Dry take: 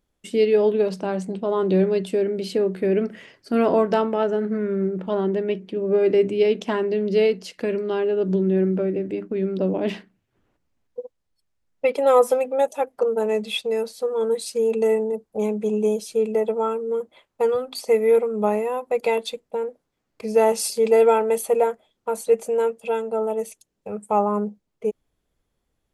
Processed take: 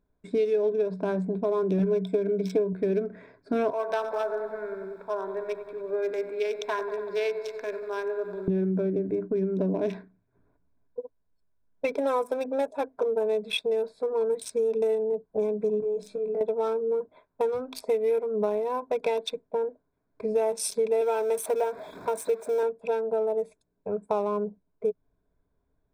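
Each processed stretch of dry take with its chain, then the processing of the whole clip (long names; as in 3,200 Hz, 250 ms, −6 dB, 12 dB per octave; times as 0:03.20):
0:01.78–0:02.73: EQ curve with evenly spaced ripples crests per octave 1.7, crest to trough 14 dB + highs frequency-modulated by the lows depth 0.2 ms
0:03.70–0:08.48: high-pass filter 860 Hz + feedback echo at a low word length 94 ms, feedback 80%, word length 8 bits, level −10 dB
0:15.80–0:16.41: mains-hum notches 50/100/150/200/250/300/350 Hz + downward compressor 16 to 1, threshold −28 dBFS + double-tracking delay 21 ms −5 dB
0:21.01–0:22.63: converter with a step at zero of −32 dBFS + high-pass filter 320 Hz 6 dB per octave
whole clip: adaptive Wiener filter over 15 samples; EQ curve with evenly spaced ripples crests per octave 1.6, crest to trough 9 dB; downward compressor 4 to 1, threshold −24 dBFS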